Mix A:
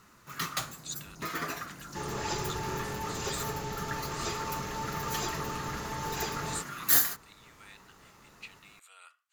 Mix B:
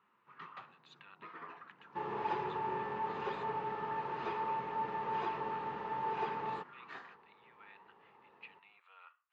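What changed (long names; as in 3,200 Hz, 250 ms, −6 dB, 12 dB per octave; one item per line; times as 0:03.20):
first sound −12.0 dB
master: add loudspeaker in its box 270–2,400 Hz, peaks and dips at 290 Hz −7 dB, 630 Hz −7 dB, 950 Hz +5 dB, 1,500 Hz −4 dB, 2,100 Hz −5 dB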